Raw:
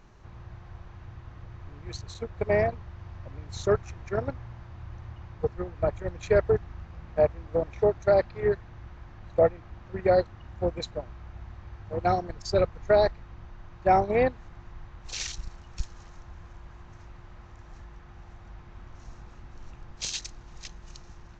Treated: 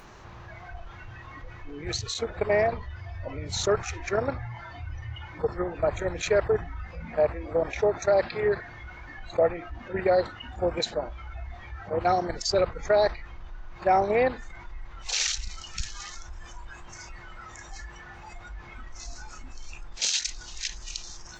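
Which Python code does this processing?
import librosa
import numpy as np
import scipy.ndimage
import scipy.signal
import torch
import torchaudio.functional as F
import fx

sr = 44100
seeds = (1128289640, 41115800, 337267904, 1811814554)

y = fx.noise_reduce_blind(x, sr, reduce_db=18)
y = fx.low_shelf(y, sr, hz=260.0, db=-11.0)
y = fx.env_flatten(y, sr, amount_pct=50)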